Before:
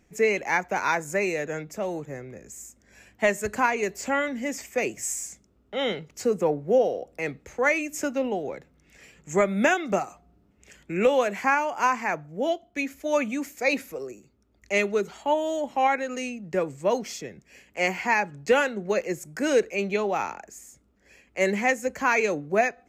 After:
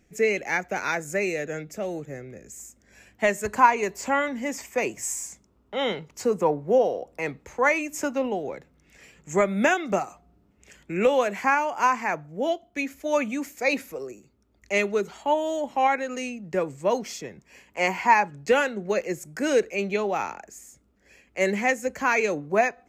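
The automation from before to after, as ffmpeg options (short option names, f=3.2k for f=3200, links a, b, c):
-af "asetnsamples=n=441:p=0,asendcmd='2.6 equalizer g -1;3.45 equalizer g 9;8.26 equalizer g 2;17.24 equalizer g 10;18.28 equalizer g -0.5;22.37 equalizer g 7',equalizer=f=980:t=o:w=0.42:g=-9.5"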